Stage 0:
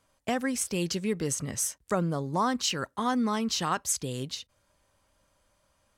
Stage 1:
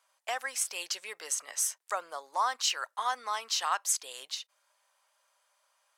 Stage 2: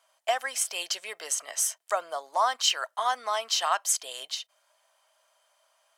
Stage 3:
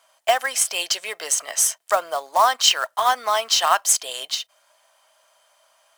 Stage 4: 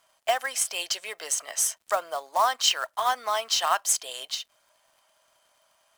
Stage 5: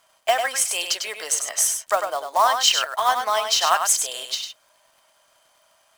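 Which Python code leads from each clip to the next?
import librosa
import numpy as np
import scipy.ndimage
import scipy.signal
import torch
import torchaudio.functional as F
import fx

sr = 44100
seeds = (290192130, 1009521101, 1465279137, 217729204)

y1 = scipy.signal.sosfilt(scipy.signal.butter(4, 710.0, 'highpass', fs=sr, output='sos'), x)
y2 = fx.small_body(y1, sr, hz=(660.0, 3100.0), ring_ms=45, db=12)
y2 = y2 * 10.0 ** (3.0 / 20.0)
y3 = fx.quant_float(y2, sr, bits=2)
y3 = y3 * 10.0 ** (8.0 / 20.0)
y4 = fx.dmg_crackle(y3, sr, seeds[0], per_s=120.0, level_db=-47.0)
y4 = y4 * 10.0 ** (-6.0 / 20.0)
y5 = y4 + 10.0 ** (-6.5 / 20.0) * np.pad(y4, (int(99 * sr / 1000.0), 0))[:len(y4)]
y5 = y5 * 10.0 ** (4.5 / 20.0)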